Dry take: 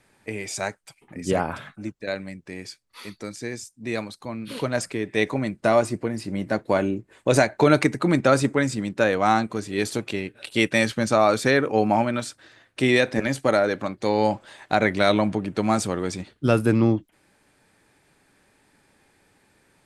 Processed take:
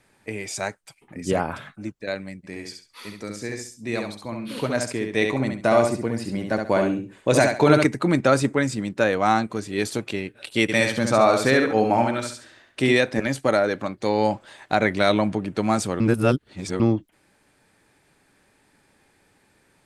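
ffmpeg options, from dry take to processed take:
-filter_complex "[0:a]asplit=3[a][b][c];[a]afade=t=out:st=2.43:d=0.02[d];[b]aecho=1:1:68|136|204:0.562|0.141|0.0351,afade=t=in:st=2.43:d=0.02,afade=t=out:st=7.85:d=0.02[e];[c]afade=t=in:st=7.85:d=0.02[f];[d][e][f]amix=inputs=3:normalize=0,asplit=3[g][h][i];[g]afade=t=out:st=10.68:d=0.02[j];[h]aecho=1:1:69|138|207|276:0.562|0.169|0.0506|0.0152,afade=t=in:st=10.68:d=0.02,afade=t=out:st=12.92:d=0.02[k];[i]afade=t=in:st=12.92:d=0.02[l];[j][k][l]amix=inputs=3:normalize=0,asplit=3[m][n][o];[m]atrim=end=16.002[p];[n]atrim=start=15.998:end=16.802,asetpts=PTS-STARTPTS,areverse[q];[o]atrim=start=16.798[r];[p][q]acrossfade=d=0.004:c1=hsin:c2=hsin[s];[s][r]acrossfade=d=0.004:c1=hsin:c2=hsin"

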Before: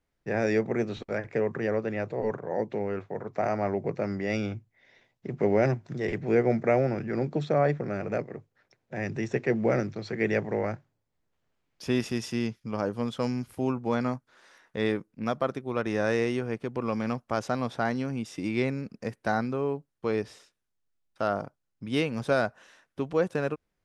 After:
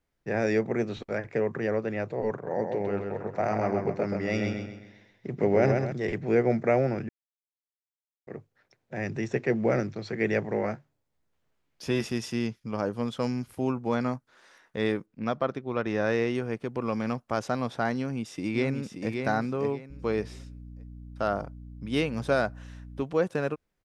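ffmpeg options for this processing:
-filter_complex "[0:a]asettb=1/sr,asplit=3[a][b][c];[a]atrim=end=2.344[d];[b]atrim=start=2.34:end=5.92,asetpts=PTS-STARTPTS,afade=t=in:d=0.004:c=qsin,afade=t=out:st=3.576:d=0.004:c=qsin,aecho=1:1:130|260|390|520|650:0.596|0.238|0.0953|0.0381|0.0152,atrim=end_sample=157878[e];[c]atrim=start=5.916[f];[d][e]acrossfade=d=0.004:c1=hsin:c2=qsin[g];[g][f]acrossfade=d=0.004:c1=qsin:c2=hsin,asettb=1/sr,asplit=3[h][i][j];[h]atrim=end=10.544[k];[i]atrim=start=10.54:end=12.06,asetpts=PTS-STARTPTS,afade=t=in:d=0.004:c=qsin,afade=t=out:st=1.516:d=0.004:c=qsin,asplit=2[l][m];[m]adelay=14,volume=-8.5dB[n];[l][n]amix=inputs=2:normalize=0,atrim=end_sample=67032[o];[j]atrim=start=12.056[p];[k][o]acrossfade=d=0.004:c1=hsin:c2=qsin[q];[q][p]acrossfade=d=0.004:c1=qsin:c2=hsin,asettb=1/sr,asplit=3[r][s][t];[r]atrim=end=15.064[u];[s]atrim=start=15.06:end=16.35,asetpts=PTS-STARTPTS,afade=t=in:d=0.004:c=qsin,afade=t=out:st=1.286:d=0.004:c=qsin,lowpass=5.2k[v];[t]atrim=start=16.346[w];[u][v]acrossfade=d=0.004:c1=hsin:c2=qsin[x];[x][w]acrossfade=d=0.004:c1=qsin:c2=hsin,asplit=2[y][z];[z]afade=t=in:st=17.96:d=0.01,afade=t=out:st=19.12:d=0.01,aecho=0:1:580|1160|1740:0.530884|0.132721|0.0331803[aa];[y][aa]amix=inputs=2:normalize=0,asettb=1/sr,asplit=3[ab][ac][ad];[ab]atrim=end=19.904[ae];[ac]atrim=start=19.9:end=23.03,asetpts=PTS-STARTPTS,afade=t=in:d=0.004:c=qsin,afade=t=out:st=3.126:d=0.004:c=qsin,aeval=exprs='val(0)+0.00794*(sin(2*PI*60*n/s)+sin(2*PI*2*60*n/s)/2+sin(2*PI*3*60*n/s)/3+sin(2*PI*4*60*n/s)/4+sin(2*PI*5*60*n/s)/5)':c=same[af];[ad]atrim=start=23.026[ag];[ae][af]acrossfade=d=0.004:c1=hsin:c2=qsin[ah];[ah][ag]acrossfade=d=0.004:c1=qsin:c2=hsin,asplit=3[ai][aj][ak];[ai]atrim=end=7.09,asetpts=PTS-STARTPTS,afade=t=out:st=7.086:d=0.004:c=hsin[al];[aj]atrim=start=7.09:end=8.27,asetpts=PTS-STARTPTS,volume=0[am];[ak]atrim=start=8.27,asetpts=PTS-STARTPTS,afade=t=in:d=0.004:c=hsin[an];[al][am][an]concat=n=3:v=0:a=1"

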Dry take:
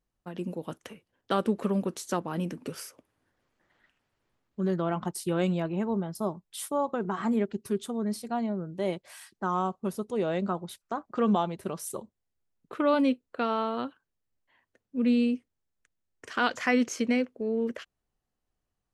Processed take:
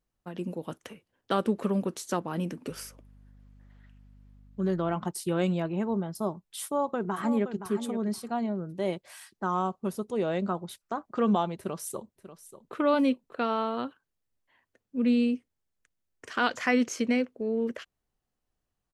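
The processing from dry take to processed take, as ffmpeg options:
-filter_complex "[0:a]asettb=1/sr,asplit=3[a][b][c];[a]atrim=end=2.694[d];[b]atrim=start=2.69:end=4.95,asetpts=PTS-STARTPTS,afade=t=in:d=0.004:c=qsin,afade=t=out:st=2.256:d=0.004:c=qsin,aeval=exprs='val(0)+0.00224*(sin(2*PI*50*n/s)+sin(2*PI*2*50*n/s)/2+sin(2*PI*3*50*n/s)/3+sin(2*PI*4*50*n/s)/4+sin(2*PI*5*50*n/s)/5)':c=same[e];[c]atrim=start=4.946[f];[d][e]acrossfade=d=0.004:c1=hsin:c2=qsin[g];[g][f]acrossfade=d=0.004:c1=qsin:c2=hsin,asplit=2[h][i];[i]afade=t=in:st=6.64:d=0.01,afade=t=out:st=7.68:d=0.01,aecho=0:1:520|1040:0.316228|0.0474342[j];[h][j]amix=inputs=2:normalize=0,asplit=2[k][l];[l]afade=t=in:st=11.57:d=0.01,afade=t=out:st=12.75:d=0.01,aecho=0:1:590|1180:0.211349|0.0422698[m];[k][m]amix=inputs=2:normalize=0"

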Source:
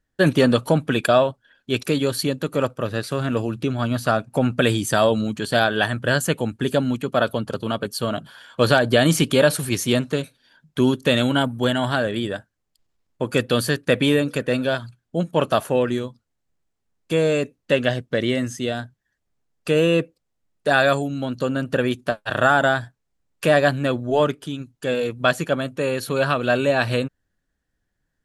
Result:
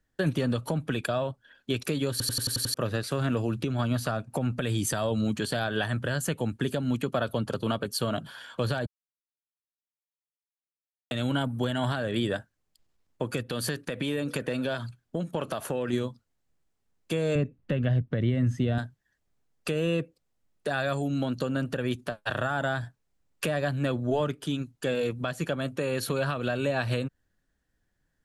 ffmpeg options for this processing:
-filter_complex "[0:a]asplit=3[a][b][c];[a]afade=t=out:st=13.42:d=0.02[d];[b]acompressor=threshold=-25dB:ratio=6:attack=3.2:release=140:knee=1:detection=peak,afade=t=in:st=13.42:d=0.02,afade=t=out:st=15.92:d=0.02[e];[c]afade=t=in:st=15.92:d=0.02[f];[d][e][f]amix=inputs=3:normalize=0,asettb=1/sr,asplit=3[g][h][i];[g]atrim=end=17.354[j];[h]atrim=start=17.35:end=18.78,asetpts=PTS-STARTPTS,afade=t=in:d=0.004:c=qsin,afade=t=out:st=1.426:d=0.004:c=qsin,bass=f=250:g=11,treble=f=4k:g=-15[k];[i]atrim=start=18.776[l];[j][k]acrossfade=d=0.004:c1=hsin:c2=qsin[m];[m][l]acrossfade=d=0.004:c1=qsin:c2=hsin,asplit=10[n][o][p][q][r][s][t][u][v][w];[n]atrim=end=2.202[x];[o]atrim=start=2.108:end=2.202[y];[p]atrim=start=2.108:end=2.202[z];[q]atrim=start=2.108:end=2.202[aa];[r]atrim=start=2.108:end=2.202[ab];[s]atrim=start=2.108:end=2.202[ac];[t]atrim=start=2.108:end=2.202[ad];[u]atrim=start=2.738:end=8.86,asetpts=PTS-STARTPTS,afade=t=out:st=6.118:d=0.004:c=hsin[ae];[v]atrim=start=8.86:end=11.11,asetpts=PTS-STARTPTS,volume=0[af];[w]atrim=start=11.11,asetpts=PTS-STARTPTS,afade=t=in:d=0.004:c=hsin[ag];[x][y]acrossfade=d=0.004:c1=hsin:c2=hsin[ah];[ah][z]acrossfade=d=0.004:c1=hsin:c2=hsin[ai];[ai][aa]acrossfade=d=0.004:c1=hsin:c2=hsin[aj];[aj][ab]acrossfade=d=0.004:c1=hsin:c2=hsin[ak];[ak][ac]acrossfade=d=0.004:c1=hsin:c2=hsin[al];[al][ad]acrossfade=d=0.004:c1=hsin:c2=hsin[am];[ae][af][ag]concat=n=3:v=0:a=1[an];[am][an]acrossfade=d=0.004:c1=hsin:c2=hsin,acrossover=split=140[ao][ap];[ap]acompressor=threshold=-24dB:ratio=6[aq];[ao][aq]amix=inputs=2:normalize=0,alimiter=limit=-17dB:level=0:latency=1:release=203"

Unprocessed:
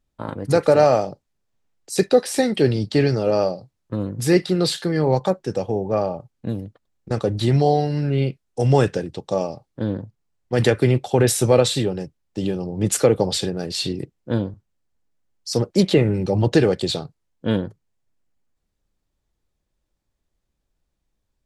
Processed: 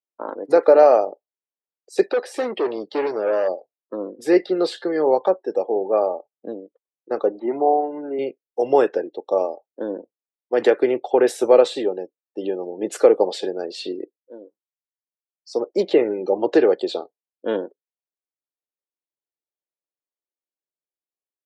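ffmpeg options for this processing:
-filter_complex "[0:a]asplit=3[a][b][c];[a]afade=t=out:st=2.05:d=0.02[d];[b]asoftclip=type=hard:threshold=-19.5dB,afade=t=in:st=2.05:d=0.02,afade=t=out:st=3.47:d=0.02[e];[c]afade=t=in:st=3.47:d=0.02[f];[d][e][f]amix=inputs=3:normalize=0,asettb=1/sr,asplit=3[g][h][i];[g]atrim=end=7.394[j];[h]atrim=start=7.39:end=8.19,asetpts=PTS-STARTPTS,afade=t=in:d=0.004:c=qsin,afade=t=out:st=0.796:d=0.004:c=qsin,highpass=f=170:w=0.5412,highpass=f=170:w=1.3066,equalizer=f=490:t=q:w=4:g=-7,equalizer=f=970:t=q:w=4:g=5,equalizer=f=1.7k:t=q:w=4:g=-7,lowpass=f=2.1k:w=0.5412,lowpass=f=2.1k:w=1.3066[k];[i]atrim=start=8.186[l];[j][k]acrossfade=d=0.004:c1=hsin:c2=qsin[m];[m][l]acrossfade=d=0.004:c1=qsin:c2=hsin,asplit=2[n][o];[n]atrim=end=14.17,asetpts=PTS-STARTPTS,afade=t=out:st=14.166:d=0.004:c=hsin:silence=0.0891251[p];[o]atrim=start=14.17,asetpts=PTS-STARTPTS,afade=t=in:d=1.93:silence=0.0891251[q];[p][q]concat=n=2:v=0:a=1,highpass=f=350:w=0.5412,highpass=f=350:w=1.3066,afftdn=nr=21:nf=-41,lowpass=f=1k:p=1,volume=4.5dB"

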